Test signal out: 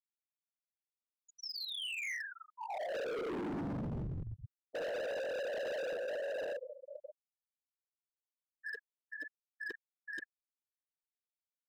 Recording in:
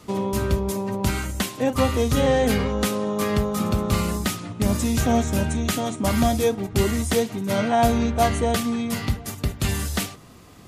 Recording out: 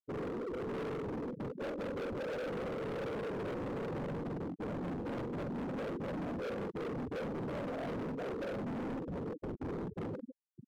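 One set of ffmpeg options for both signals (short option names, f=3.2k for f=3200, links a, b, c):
-filter_complex "[0:a]areverse,acompressor=threshold=-32dB:ratio=12,areverse,anlmdn=0.0398,highpass=190,equalizer=f=650:t=q:w=4:g=-9,equalizer=f=1.1k:t=q:w=4:g=-6,equalizer=f=2.1k:t=q:w=4:g=5,lowpass=f=5.5k:w=0.5412,lowpass=f=5.5k:w=1.3066,afftfilt=real='hypot(re,im)*cos(2*PI*random(0))':imag='hypot(re,im)*sin(2*PI*random(1))':win_size=512:overlap=0.75,lowshelf=f=780:t=q:w=3:g=12,asplit=2[a][b];[b]adelay=45,volume=-5dB[c];[a][c]amix=inputs=2:normalize=0,aecho=1:1:146|292|438:0.1|0.045|0.0202,dynaudnorm=f=610:g=3:m=5dB,afftfilt=real='re*gte(hypot(re,im),0.0891)':imag='im*gte(hypot(re,im),0.0891)':win_size=1024:overlap=0.75,alimiter=limit=-17dB:level=0:latency=1:release=171,asoftclip=type=hard:threshold=-33.5dB,volume=-3.5dB" -ar 48000 -c:a aac -b:a 160k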